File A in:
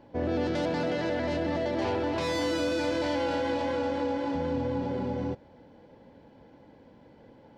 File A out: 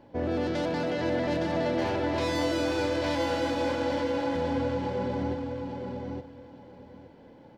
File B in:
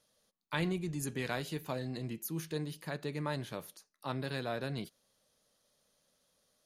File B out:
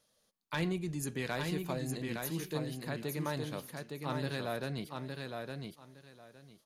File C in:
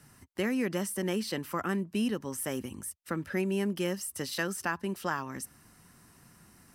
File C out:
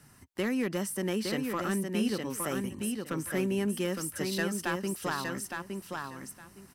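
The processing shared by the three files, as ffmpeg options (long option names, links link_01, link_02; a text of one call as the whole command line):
ffmpeg -i in.wav -af "volume=23dB,asoftclip=hard,volume=-23dB,aecho=1:1:863|1726|2589:0.596|0.113|0.0215" out.wav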